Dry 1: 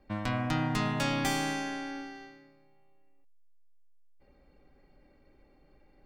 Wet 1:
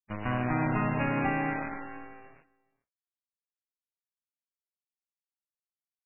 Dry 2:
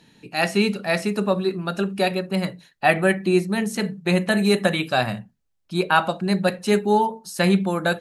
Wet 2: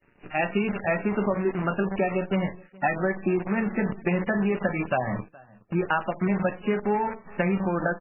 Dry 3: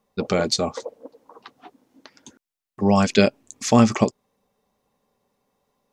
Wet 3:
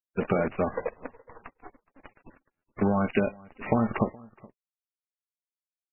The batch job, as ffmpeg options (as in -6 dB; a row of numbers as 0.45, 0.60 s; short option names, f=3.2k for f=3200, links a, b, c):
-filter_complex "[0:a]agate=range=-33dB:threshold=-52dB:ratio=3:detection=peak,acompressor=threshold=-22dB:ratio=12,acrusher=bits=6:dc=4:mix=0:aa=0.000001,dynaudnorm=f=150:g=3:m=3.5dB,lowpass=2.2k,aemphasis=mode=production:type=50kf,asplit=2[a][b];[b]adelay=419.8,volume=-24dB,highshelf=f=4k:g=-9.45[c];[a][c]amix=inputs=2:normalize=0,volume=-1.5dB" -ar 11025 -c:a libmp3lame -b:a 8k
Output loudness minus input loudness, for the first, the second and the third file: +1.5, -5.0, -7.5 LU